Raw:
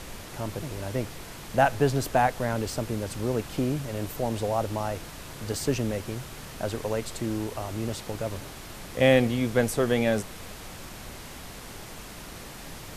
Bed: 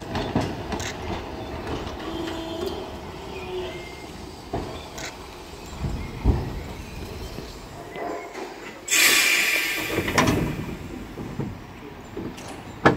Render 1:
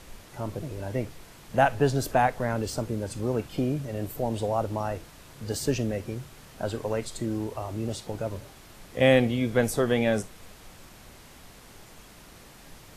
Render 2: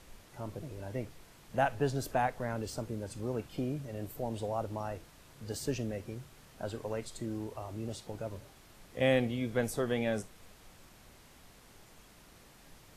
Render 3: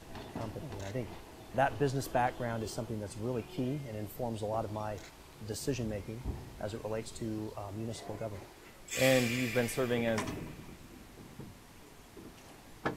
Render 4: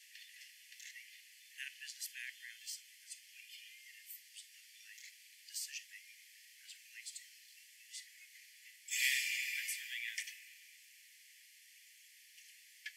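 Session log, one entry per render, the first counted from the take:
noise print and reduce 8 dB
gain -8 dB
add bed -18.5 dB
steep high-pass 1800 Hz 96 dB/oct; notch 3800 Hz, Q 8.7

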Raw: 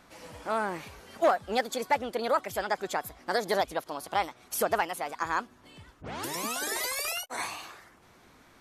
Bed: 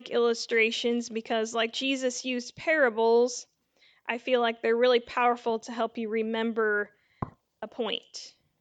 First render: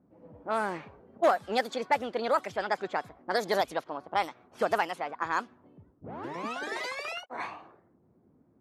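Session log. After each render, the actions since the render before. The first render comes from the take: HPF 110 Hz 12 dB/oct; low-pass opened by the level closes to 300 Hz, open at -24 dBFS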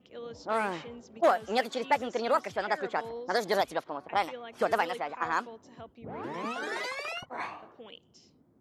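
add bed -18 dB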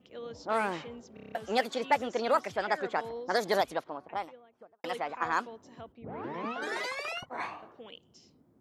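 1.14 stutter in place 0.03 s, 7 plays; 3.52–4.84 studio fade out; 5.92–6.62 air absorption 200 m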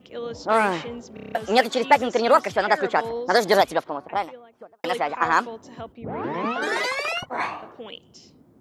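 gain +10 dB

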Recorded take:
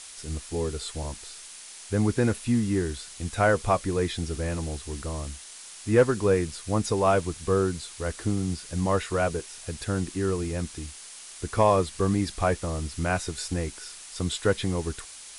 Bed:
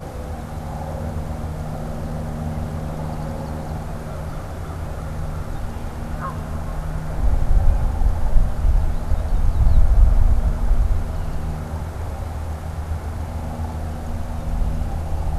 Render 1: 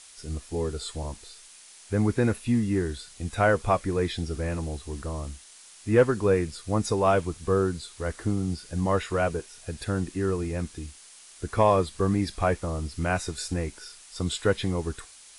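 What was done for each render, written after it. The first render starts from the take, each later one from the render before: noise print and reduce 6 dB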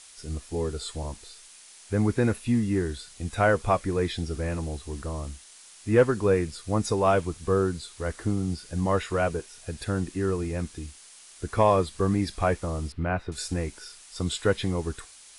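12.92–13.32 air absorption 420 m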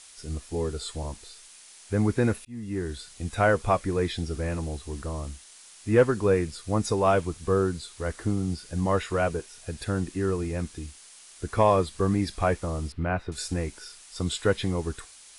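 2.45–3.01 fade in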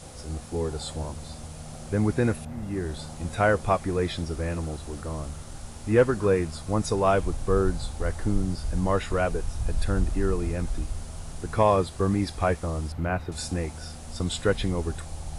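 add bed -13 dB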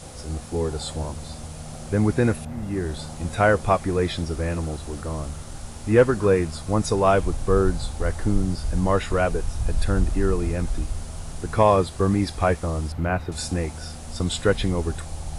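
gain +3.5 dB

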